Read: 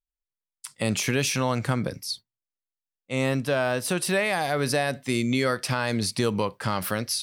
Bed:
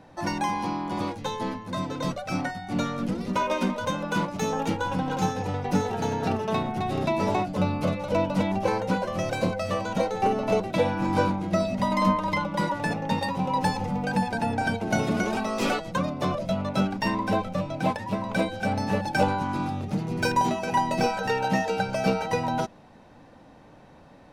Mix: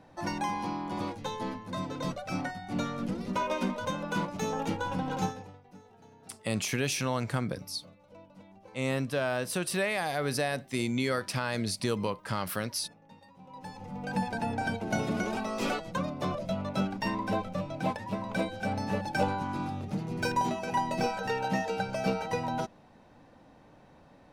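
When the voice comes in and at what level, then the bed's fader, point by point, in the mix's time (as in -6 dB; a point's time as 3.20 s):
5.65 s, -5.5 dB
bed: 5.24 s -5 dB
5.65 s -28.5 dB
13.30 s -28.5 dB
14.18 s -5.5 dB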